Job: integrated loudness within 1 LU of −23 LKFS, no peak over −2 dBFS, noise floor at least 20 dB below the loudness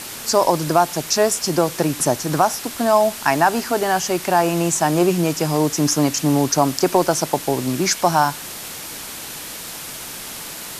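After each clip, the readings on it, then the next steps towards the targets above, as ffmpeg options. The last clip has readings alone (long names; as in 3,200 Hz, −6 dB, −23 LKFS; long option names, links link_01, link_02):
background noise floor −33 dBFS; target noise floor −39 dBFS; integrated loudness −18.5 LKFS; sample peak −2.5 dBFS; target loudness −23.0 LKFS
→ -af "afftdn=noise_reduction=6:noise_floor=-33"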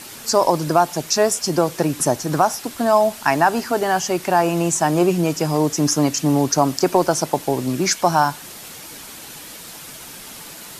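background noise floor −38 dBFS; target noise floor −39 dBFS
→ -af "afftdn=noise_reduction=6:noise_floor=-38"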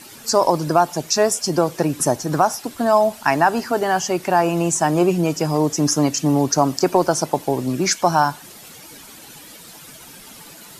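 background noise floor −42 dBFS; integrated loudness −19.0 LKFS; sample peak −2.5 dBFS; target loudness −23.0 LKFS
→ -af "volume=-4dB"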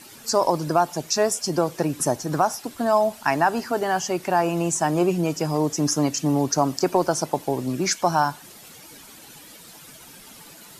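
integrated loudness −23.0 LKFS; sample peak −6.5 dBFS; background noise floor −46 dBFS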